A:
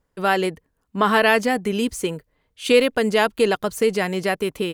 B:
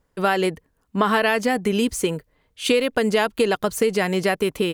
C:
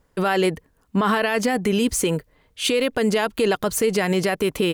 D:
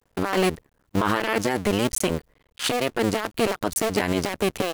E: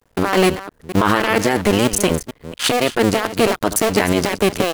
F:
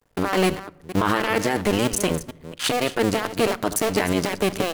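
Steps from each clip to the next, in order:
compressor 6:1, threshold -19 dBFS, peak gain reduction 9 dB; gain +3.5 dB
limiter -16.5 dBFS, peak gain reduction 11 dB; gain +5 dB
cycle switcher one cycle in 2, muted
reverse delay 0.231 s, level -12.5 dB; gain +7 dB
shoebox room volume 2300 m³, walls furnished, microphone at 0.42 m; gain -5.5 dB

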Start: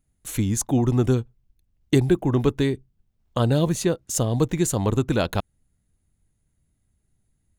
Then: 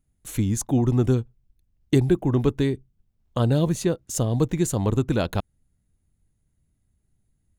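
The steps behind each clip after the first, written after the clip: low shelf 480 Hz +4 dB; gain -3.5 dB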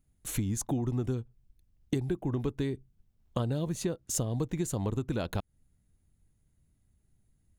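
compressor 6:1, threshold -28 dBFS, peak gain reduction 14 dB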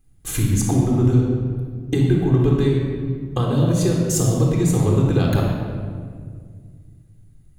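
shoebox room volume 3000 m³, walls mixed, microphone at 3.8 m; gain +6.5 dB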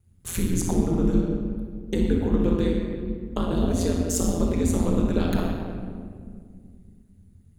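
ring modulator 87 Hz; gain -2 dB

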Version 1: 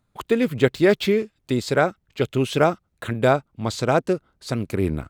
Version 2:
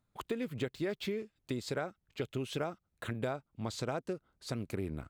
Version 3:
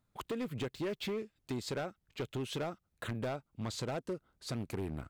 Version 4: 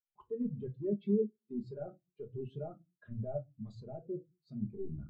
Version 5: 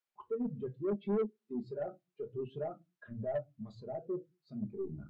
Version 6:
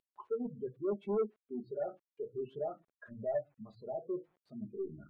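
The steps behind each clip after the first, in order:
compressor 5:1, threshold -24 dBFS, peak gain reduction 12 dB; gain -9 dB
overloaded stage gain 33 dB; gain +1 dB
reverse; compressor 8:1, threshold -45 dBFS, peak gain reduction 11 dB; reverse; shoebox room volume 320 m³, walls furnished, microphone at 1.3 m; spectral expander 2.5:1; gain +12 dB
overdrive pedal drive 20 dB, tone 1700 Hz, clips at -19.5 dBFS; gain -4 dB
CVSD 64 kbps; spectral gate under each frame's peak -30 dB strong; tone controls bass -10 dB, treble -14 dB; gain +2 dB

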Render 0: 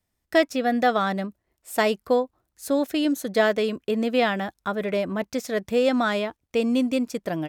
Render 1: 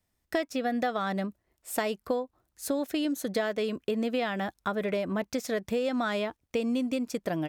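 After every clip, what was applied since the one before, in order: compressor 6:1, threshold -26 dBFS, peak gain reduction 11.5 dB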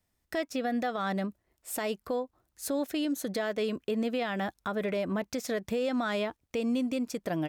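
limiter -22.5 dBFS, peak gain reduction 7.5 dB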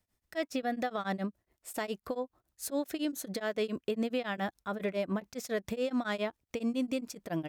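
beating tremolo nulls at 7.2 Hz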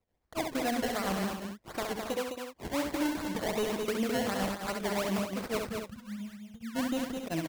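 spectral gain 5.65–6.75, 220–10000 Hz -30 dB; decimation with a swept rate 25×, swing 100% 2.7 Hz; loudspeakers at several distances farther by 23 m -5 dB, 72 m -5 dB, 94 m -10 dB

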